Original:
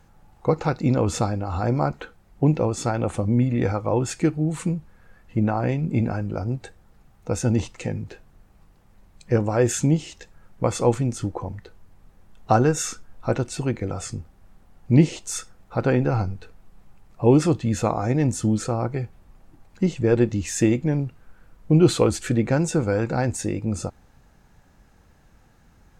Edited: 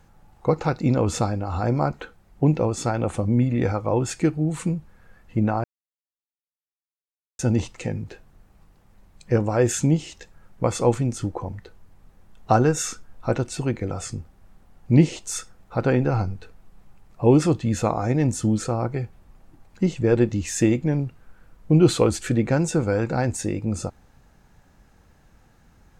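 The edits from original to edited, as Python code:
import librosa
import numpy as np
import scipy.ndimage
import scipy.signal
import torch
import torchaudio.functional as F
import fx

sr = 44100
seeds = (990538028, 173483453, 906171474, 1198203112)

y = fx.edit(x, sr, fx.silence(start_s=5.64, length_s=1.75), tone=tone)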